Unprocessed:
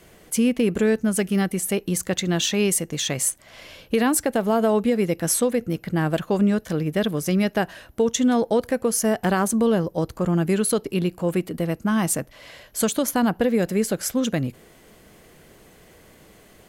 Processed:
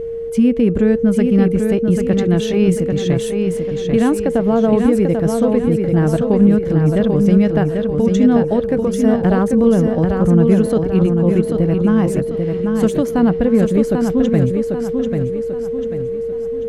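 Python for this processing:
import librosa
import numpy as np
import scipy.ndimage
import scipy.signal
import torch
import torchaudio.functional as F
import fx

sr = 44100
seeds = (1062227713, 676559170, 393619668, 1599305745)

y = x + 10.0 ** (-25.0 / 20.0) * np.sin(2.0 * np.pi * 460.0 * np.arange(len(x)) / sr)
y = fx.riaa(y, sr, side='playback')
y = fx.echo_feedback(y, sr, ms=791, feedback_pct=42, wet_db=-5)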